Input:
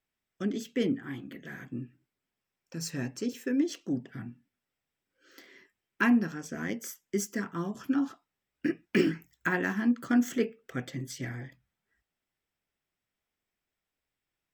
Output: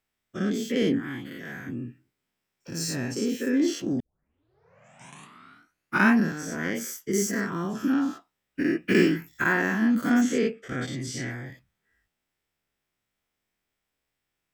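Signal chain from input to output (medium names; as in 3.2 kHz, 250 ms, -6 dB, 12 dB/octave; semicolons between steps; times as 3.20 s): every event in the spectrogram widened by 120 ms; 4.00 s: tape start 2.18 s; 10.21–11.30 s: Chebyshev low-pass 7.9 kHz, order 2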